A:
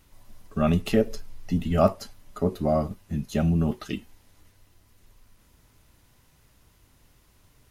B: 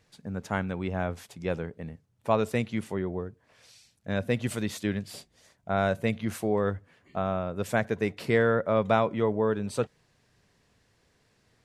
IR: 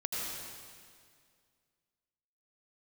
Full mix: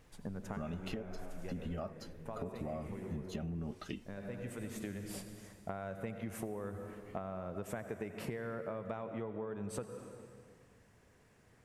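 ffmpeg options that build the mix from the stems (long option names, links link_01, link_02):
-filter_complex "[0:a]lowpass=frequency=4000:poles=1,acompressor=threshold=-26dB:ratio=4,volume=-6.5dB,asplit=2[link_01][link_02];[1:a]equalizer=frequency=4200:width=1.3:gain=-10.5,acompressor=threshold=-34dB:ratio=5,volume=0dB,asplit=2[link_03][link_04];[link_04]volume=-11.5dB[link_05];[link_02]apad=whole_len=513331[link_06];[link_03][link_06]sidechaincompress=threshold=-52dB:ratio=8:attack=5.8:release=854[link_07];[2:a]atrim=start_sample=2205[link_08];[link_05][link_08]afir=irnorm=-1:irlink=0[link_09];[link_01][link_07][link_09]amix=inputs=3:normalize=0,acompressor=threshold=-37dB:ratio=6"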